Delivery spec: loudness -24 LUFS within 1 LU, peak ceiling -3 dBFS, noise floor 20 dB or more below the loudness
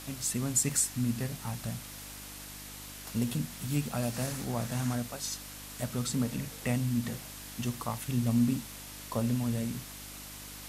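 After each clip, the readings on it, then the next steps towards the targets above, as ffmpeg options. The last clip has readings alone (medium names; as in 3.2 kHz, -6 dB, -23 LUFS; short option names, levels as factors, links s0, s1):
hum 50 Hz; highest harmonic 300 Hz; hum level -48 dBFS; noise floor -45 dBFS; noise floor target -53 dBFS; loudness -33.0 LUFS; peak level -13.5 dBFS; loudness target -24.0 LUFS
-> -af "bandreject=f=50:t=h:w=4,bandreject=f=100:t=h:w=4,bandreject=f=150:t=h:w=4,bandreject=f=200:t=h:w=4,bandreject=f=250:t=h:w=4,bandreject=f=300:t=h:w=4"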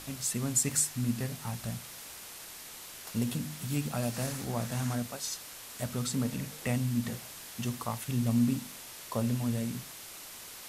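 hum not found; noise floor -47 dBFS; noise floor target -54 dBFS
-> -af "afftdn=nr=7:nf=-47"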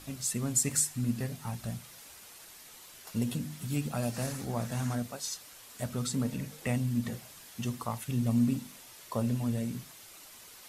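noise floor -52 dBFS; noise floor target -53 dBFS
-> -af "afftdn=nr=6:nf=-52"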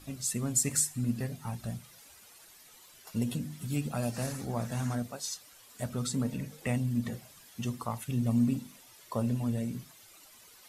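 noise floor -56 dBFS; loudness -33.0 LUFS; peak level -13.5 dBFS; loudness target -24.0 LUFS
-> -af "volume=2.82"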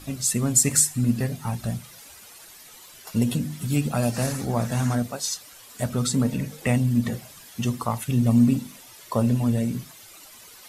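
loudness -24.0 LUFS; peak level -4.5 dBFS; noise floor -47 dBFS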